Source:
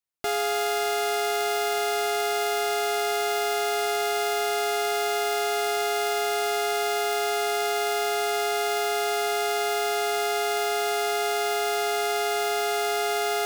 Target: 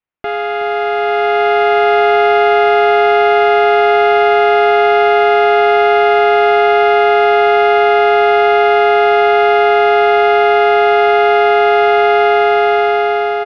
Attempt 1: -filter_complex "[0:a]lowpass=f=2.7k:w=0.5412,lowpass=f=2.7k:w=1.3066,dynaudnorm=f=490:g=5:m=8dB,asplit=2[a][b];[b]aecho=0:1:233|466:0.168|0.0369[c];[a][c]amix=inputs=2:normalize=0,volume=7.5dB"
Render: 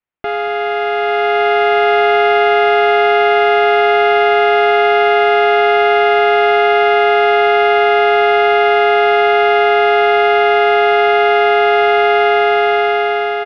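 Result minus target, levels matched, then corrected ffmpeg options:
echo 0.138 s early
-filter_complex "[0:a]lowpass=f=2.7k:w=0.5412,lowpass=f=2.7k:w=1.3066,dynaudnorm=f=490:g=5:m=8dB,asplit=2[a][b];[b]aecho=0:1:371|742:0.168|0.0369[c];[a][c]amix=inputs=2:normalize=0,volume=7.5dB"

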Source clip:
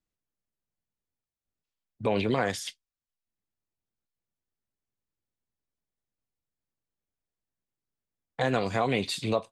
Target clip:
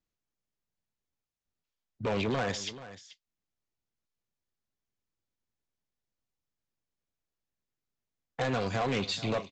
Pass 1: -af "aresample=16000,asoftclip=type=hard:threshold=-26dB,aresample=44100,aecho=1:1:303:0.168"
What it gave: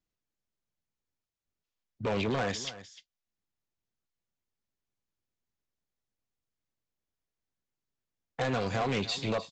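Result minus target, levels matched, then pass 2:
echo 0.131 s early
-af "aresample=16000,asoftclip=type=hard:threshold=-26dB,aresample=44100,aecho=1:1:434:0.168"

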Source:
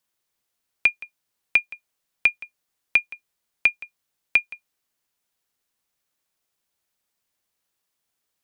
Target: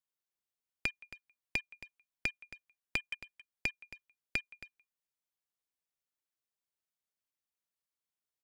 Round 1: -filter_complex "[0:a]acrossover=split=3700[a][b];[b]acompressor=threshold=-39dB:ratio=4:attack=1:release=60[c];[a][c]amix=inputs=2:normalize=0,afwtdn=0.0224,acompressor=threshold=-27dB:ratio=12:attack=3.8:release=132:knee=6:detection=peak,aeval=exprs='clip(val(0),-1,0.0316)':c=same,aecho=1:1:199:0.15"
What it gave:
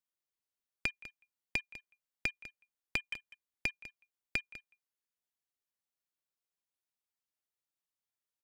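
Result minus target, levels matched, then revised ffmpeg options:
echo 73 ms early
-filter_complex "[0:a]acrossover=split=3700[a][b];[b]acompressor=threshold=-39dB:ratio=4:attack=1:release=60[c];[a][c]amix=inputs=2:normalize=0,afwtdn=0.0224,acompressor=threshold=-27dB:ratio=12:attack=3.8:release=132:knee=6:detection=peak,aeval=exprs='clip(val(0),-1,0.0316)':c=same,aecho=1:1:272:0.15"

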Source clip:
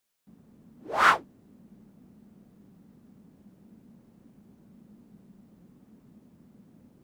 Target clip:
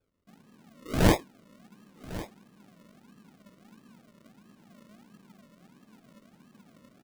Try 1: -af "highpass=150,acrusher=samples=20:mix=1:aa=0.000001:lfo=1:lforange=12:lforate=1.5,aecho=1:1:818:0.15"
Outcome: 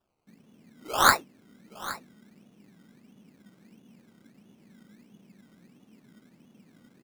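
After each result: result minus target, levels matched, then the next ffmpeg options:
decimation with a swept rate: distortion -15 dB; echo 0.283 s early
-af "highpass=150,acrusher=samples=43:mix=1:aa=0.000001:lfo=1:lforange=25.8:lforate=1.5,aecho=1:1:818:0.15"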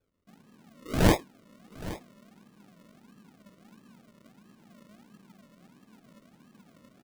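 echo 0.283 s early
-af "highpass=150,acrusher=samples=43:mix=1:aa=0.000001:lfo=1:lforange=25.8:lforate=1.5,aecho=1:1:1101:0.15"

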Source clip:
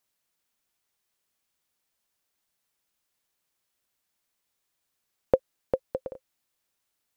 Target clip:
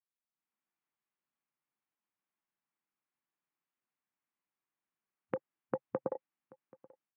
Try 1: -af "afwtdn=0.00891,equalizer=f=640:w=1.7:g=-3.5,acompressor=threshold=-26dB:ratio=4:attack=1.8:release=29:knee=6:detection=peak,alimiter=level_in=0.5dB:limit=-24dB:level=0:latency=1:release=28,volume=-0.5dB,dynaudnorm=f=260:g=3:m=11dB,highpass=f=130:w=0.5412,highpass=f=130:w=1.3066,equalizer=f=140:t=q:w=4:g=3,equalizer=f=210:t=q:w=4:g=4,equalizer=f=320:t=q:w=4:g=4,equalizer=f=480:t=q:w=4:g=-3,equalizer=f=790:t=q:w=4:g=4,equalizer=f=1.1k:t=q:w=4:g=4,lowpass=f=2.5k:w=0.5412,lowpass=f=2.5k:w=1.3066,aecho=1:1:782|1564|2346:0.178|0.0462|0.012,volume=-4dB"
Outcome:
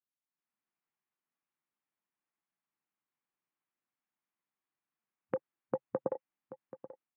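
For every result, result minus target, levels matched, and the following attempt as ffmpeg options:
echo-to-direct +9 dB; compressor: peak gain reduction -5 dB
-af "afwtdn=0.00891,equalizer=f=640:w=1.7:g=-3.5,acompressor=threshold=-26dB:ratio=4:attack=1.8:release=29:knee=6:detection=peak,alimiter=level_in=0.5dB:limit=-24dB:level=0:latency=1:release=28,volume=-0.5dB,dynaudnorm=f=260:g=3:m=11dB,highpass=f=130:w=0.5412,highpass=f=130:w=1.3066,equalizer=f=140:t=q:w=4:g=3,equalizer=f=210:t=q:w=4:g=4,equalizer=f=320:t=q:w=4:g=4,equalizer=f=480:t=q:w=4:g=-3,equalizer=f=790:t=q:w=4:g=4,equalizer=f=1.1k:t=q:w=4:g=4,lowpass=f=2.5k:w=0.5412,lowpass=f=2.5k:w=1.3066,aecho=1:1:782|1564:0.0631|0.0164,volume=-4dB"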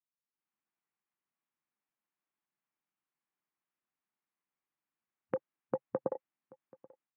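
compressor: peak gain reduction -5 dB
-af "afwtdn=0.00891,equalizer=f=640:w=1.7:g=-3.5,acompressor=threshold=-32.5dB:ratio=4:attack=1.8:release=29:knee=6:detection=peak,alimiter=level_in=0.5dB:limit=-24dB:level=0:latency=1:release=28,volume=-0.5dB,dynaudnorm=f=260:g=3:m=11dB,highpass=f=130:w=0.5412,highpass=f=130:w=1.3066,equalizer=f=140:t=q:w=4:g=3,equalizer=f=210:t=q:w=4:g=4,equalizer=f=320:t=q:w=4:g=4,equalizer=f=480:t=q:w=4:g=-3,equalizer=f=790:t=q:w=4:g=4,equalizer=f=1.1k:t=q:w=4:g=4,lowpass=f=2.5k:w=0.5412,lowpass=f=2.5k:w=1.3066,aecho=1:1:782|1564:0.0631|0.0164,volume=-4dB"

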